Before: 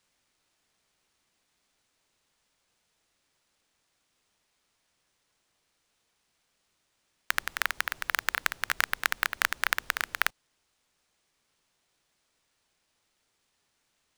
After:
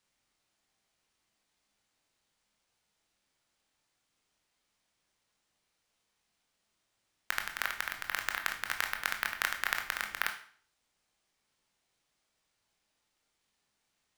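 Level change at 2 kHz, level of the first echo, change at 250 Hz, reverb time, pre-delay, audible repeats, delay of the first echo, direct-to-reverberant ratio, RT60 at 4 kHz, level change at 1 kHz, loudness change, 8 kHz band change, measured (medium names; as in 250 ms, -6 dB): -4.5 dB, no echo, -4.0 dB, 0.50 s, 19 ms, no echo, no echo, 4.0 dB, 0.45 s, -4.5 dB, -4.5 dB, -4.5 dB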